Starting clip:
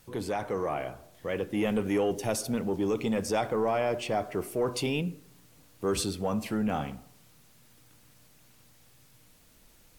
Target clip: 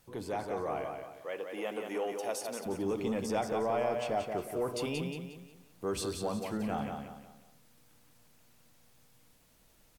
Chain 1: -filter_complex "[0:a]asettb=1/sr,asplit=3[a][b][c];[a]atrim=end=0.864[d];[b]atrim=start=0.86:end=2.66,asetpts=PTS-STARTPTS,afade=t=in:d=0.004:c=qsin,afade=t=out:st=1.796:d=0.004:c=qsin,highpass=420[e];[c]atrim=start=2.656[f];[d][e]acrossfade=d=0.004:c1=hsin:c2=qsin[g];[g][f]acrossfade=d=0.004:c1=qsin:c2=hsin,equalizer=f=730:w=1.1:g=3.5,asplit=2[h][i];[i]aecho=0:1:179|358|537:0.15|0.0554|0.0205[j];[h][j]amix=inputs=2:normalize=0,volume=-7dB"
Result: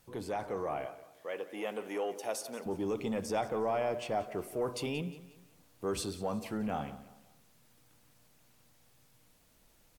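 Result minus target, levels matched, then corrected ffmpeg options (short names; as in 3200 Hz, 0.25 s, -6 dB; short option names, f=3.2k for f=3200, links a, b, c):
echo-to-direct -11 dB
-filter_complex "[0:a]asettb=1/sr,asplit=3[a][b][c];[a]atrim=end=0.864[d];[b]atrim=start=0.86:end=2.66,asetpts=PTS-STARTPTS,afade=t=in:d=0.004:c=qsin,afade=t=out:st=1.796:d=0.004:c=qsin,highpass=420[e];[c]atrim=start=2.656[f];[d][e]acrossfade=d=0.004:c1=hsin:c2=qsin[g];[g][f]acrossfade=d=0.004:c1=qsin:c2=hsin,equalizer=f=730:w=1.1:g=3.5,asplit=2[h][i];[i]aecho=0:1:179|358|537|716:0.531|0.196|0.0727|0.0269[j];[h][j]amix=inputs=2:normalize=0,volume=-7dB"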